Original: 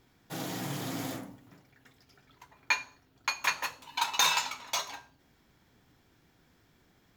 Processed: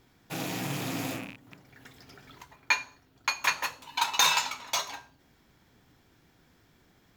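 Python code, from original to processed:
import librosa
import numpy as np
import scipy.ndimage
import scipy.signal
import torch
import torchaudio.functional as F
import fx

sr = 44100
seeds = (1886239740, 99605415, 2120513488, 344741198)

y = fx.rattle_buzz(x, sr, strikes_db=-51.0, level_db=-33.0)
y = fx.band_squash(y, sr, depth_pct=100, at=(1.3, 2.56))
y = y * librosa.db_to_amplitude(2.5)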